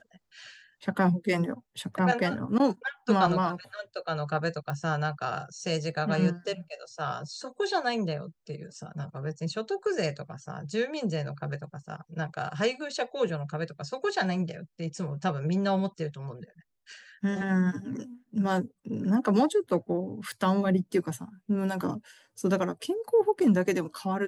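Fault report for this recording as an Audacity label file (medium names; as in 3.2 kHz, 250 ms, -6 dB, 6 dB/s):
4.700000	4.700000	pop -21 dBFS
20.320000	20.320000	pop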